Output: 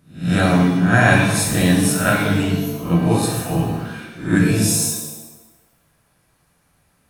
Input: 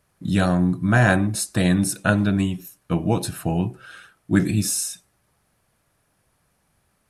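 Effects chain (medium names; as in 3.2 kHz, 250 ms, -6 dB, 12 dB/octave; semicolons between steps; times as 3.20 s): reverse spectral sustain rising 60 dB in 0.40 s; 3.22–3.63 s: phase dispersion lows, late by 98 ms, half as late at 770 Hz; pitch-shifted reverb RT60 1 s, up +7 st, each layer -8 dB, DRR -1 dB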